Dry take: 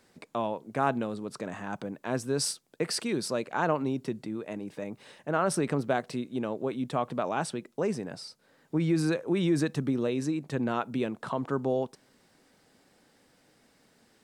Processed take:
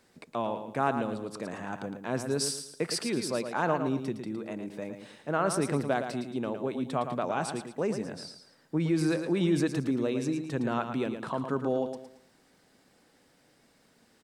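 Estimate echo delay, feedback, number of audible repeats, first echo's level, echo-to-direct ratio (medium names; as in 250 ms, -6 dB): 112 ms, 34%, 3, -8.0 dB, -7.5 dB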